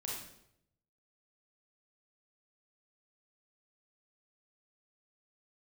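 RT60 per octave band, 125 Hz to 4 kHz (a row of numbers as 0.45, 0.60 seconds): 1.1, 0.90, 0.85, 0.70, 0.65, 0.60 seconds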